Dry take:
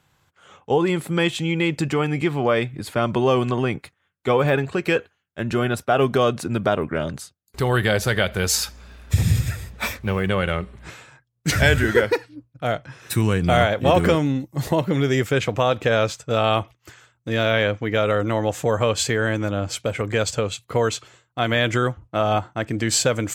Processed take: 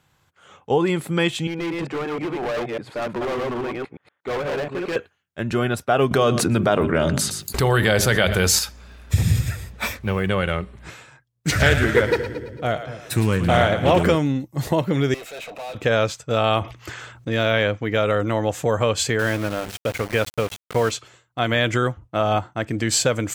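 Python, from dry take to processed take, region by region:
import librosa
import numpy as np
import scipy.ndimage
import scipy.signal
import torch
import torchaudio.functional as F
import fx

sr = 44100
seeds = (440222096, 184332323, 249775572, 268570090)

y = fx.chain(x, sr, fx.reverse_delay(ms=119, wet_db=-2.0),
    fx.bandpass_q(hz=710.0, q=0.58),
    fx.clip_hard(threshold_db=-23.0), at=(1.47, 4.96))
y = fx.chain(y, sr, fx.hum_notches(base_hz=50, count=8),
    fx.echo_single(ms=118, db=-21.5),
    fx.env_flatten(amount_pct=70), at=(6.11, 8.59))
y = fx.chain(y, sr, fx.echo_split(split_hz=490.0, low_ms=234, high_ms=111, feedback_pct=52, wet_db=-10.5),
    fx.doppler_dist(depth_ms=0.25), at=(11.48, 14.03))
y = fx.chain(y, sr, fx.highpass(hz=430.0, slope=12),
    fx.tube_stage(drive_db=37.0, bias=0.25),
    fx.small_body(hz=(660.0, 2600.0, 3800.0), ring_ms=20, db=12), at=(15.14, 15.75))
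y = fx.chain(y, sr, fx.high_shelf(hz=8100.0, db=-12.0),
    fx.env_flatten(amount_pct=50), at=(16.61, 17.33))
y = fx.chain(y, sr, fx.high_shelf_res(hz=3800.0, db=-8.0, q=1.5),
    fx.hum_notches(base_hz=50, count=4),
    fx.sample_gate(floor_db=-28.0), at=(19.19, 20.91))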